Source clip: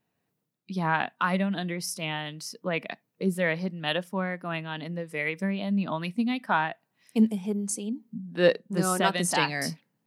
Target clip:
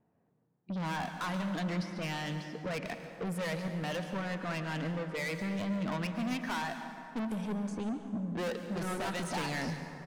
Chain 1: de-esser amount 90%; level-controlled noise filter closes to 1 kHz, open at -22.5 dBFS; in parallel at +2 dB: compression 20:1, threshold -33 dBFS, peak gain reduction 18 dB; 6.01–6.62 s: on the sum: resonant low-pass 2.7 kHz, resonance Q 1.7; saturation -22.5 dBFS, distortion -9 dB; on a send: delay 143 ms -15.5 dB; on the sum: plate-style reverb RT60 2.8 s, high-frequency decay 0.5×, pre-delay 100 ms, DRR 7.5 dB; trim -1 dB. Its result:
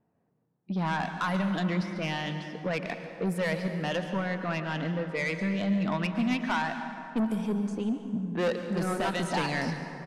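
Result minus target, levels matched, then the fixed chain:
saturation: distortion -5 dB
de-esser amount 90%; level-controlled noise filter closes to 1 kHz, open at -22.5 dBFS; in parallel at +2 dB: compression 20:1, threshold -33 dBFS, peak gain reduction 18 dB; 6.01–6.62 s: on the sum: resonant low-pass 2.7 kHz, resonance Q 1.7; saturation -32 dBFS, distortion -4 dB; on a send: delay 143 ms -15.5 dB; on the sum: plate-style reverb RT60 2.8 s, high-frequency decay 0.5×, pre-delay 100 ms, DRR 7.5 dB; trim -1 dB

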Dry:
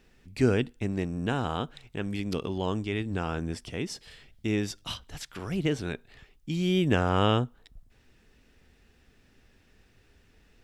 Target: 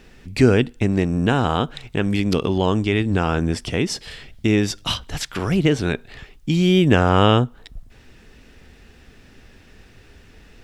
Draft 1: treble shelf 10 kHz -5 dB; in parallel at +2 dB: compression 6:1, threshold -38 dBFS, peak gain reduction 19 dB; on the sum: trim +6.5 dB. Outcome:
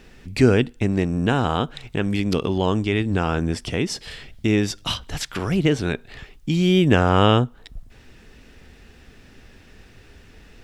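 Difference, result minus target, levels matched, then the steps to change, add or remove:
compression: peak gain reduction +5.5 dB
change: compression 6:1, threshold -31.5 dBFS, peak gain reduction 13.5 dB

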